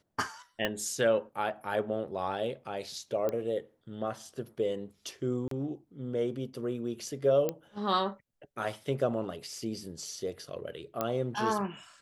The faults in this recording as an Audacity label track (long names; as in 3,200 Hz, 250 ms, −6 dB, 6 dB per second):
0.650000	0.650000	click −15 dBFS
3.290000	3.290000	click −20 dBFS
5.480000	5.510000	drop-out 33 ms
7.490000	7.490000	click −17 dBFS
11.010000	11.010000	click −16 dBFS